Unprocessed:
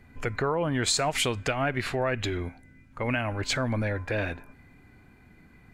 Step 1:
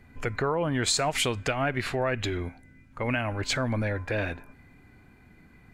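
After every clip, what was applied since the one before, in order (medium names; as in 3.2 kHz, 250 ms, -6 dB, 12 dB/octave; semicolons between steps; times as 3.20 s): no audible change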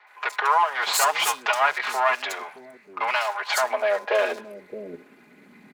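comb filter that takes the minimum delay 4.8 ms; high-pass sweep 910 Hz -> 150 Hz, 3.47–5.56 s; three bands offset in time mids, highs, lows 70/620 ms, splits 350/4600 Hz; trim +6 dB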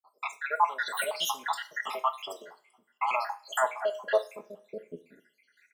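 random holes in the spectrogram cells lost 80%; reverberation, pre-delay 3 ms, DRR 8 dB; trim -2.5 dB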